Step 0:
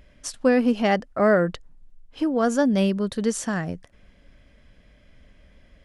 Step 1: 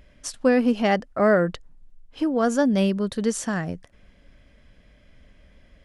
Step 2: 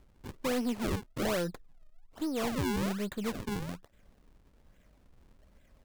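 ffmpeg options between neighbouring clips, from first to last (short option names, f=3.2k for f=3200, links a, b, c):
-af anull
-af "aeval=exprs='if(lt(val(0),0),0.708*val(0),val(0))':c=same,acrusher=samples=40:mix=1:aa=0.000001:lfo=1:lforange=64:lforate=1.2,asoftclip=type=tanh:threshold=-20dB,volume=-6.5dB"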